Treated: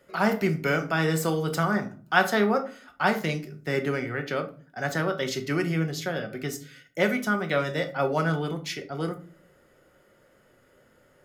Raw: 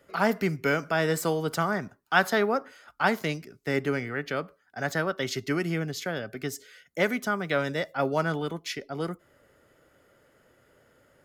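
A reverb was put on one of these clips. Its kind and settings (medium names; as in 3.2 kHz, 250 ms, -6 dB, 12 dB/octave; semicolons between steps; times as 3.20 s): simulated room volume 270 m³, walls furnished, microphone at 0.99 m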